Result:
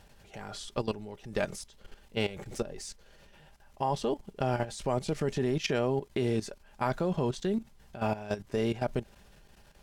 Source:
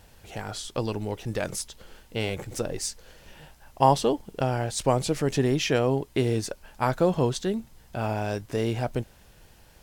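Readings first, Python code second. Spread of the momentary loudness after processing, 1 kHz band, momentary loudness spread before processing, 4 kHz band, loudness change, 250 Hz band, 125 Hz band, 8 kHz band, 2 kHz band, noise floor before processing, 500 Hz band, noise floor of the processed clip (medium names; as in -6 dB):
13 LU, -7.5 dB, 12 LU, -6.5 dB, -5.5 dB, -4.5 dB, -6.5 dB, -10.5 dB, -4.5 dB, -55 dBFS, -5.0 dB, -59 dBFS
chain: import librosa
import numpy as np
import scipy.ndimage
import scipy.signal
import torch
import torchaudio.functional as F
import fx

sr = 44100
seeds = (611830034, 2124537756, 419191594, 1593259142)

y = fx.high_shelf(x, sr, hz=10000.0, db=-10.0)
y = y + 0.35 * np.pad(y, (int(5.0 * sr / 1000.0), 0))[:len(y)]
y = fx.level_steps(y, sr, step_db=14)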